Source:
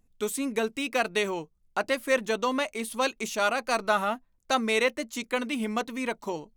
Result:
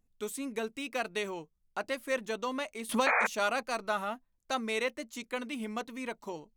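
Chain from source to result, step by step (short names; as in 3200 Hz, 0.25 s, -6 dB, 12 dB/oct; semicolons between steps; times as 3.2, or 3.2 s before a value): 3.06–3.27 painted sound noise 450–2500 Hz -19 dBFS; 2.89–3.63 three-band squash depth 100%; gain -7.5 dB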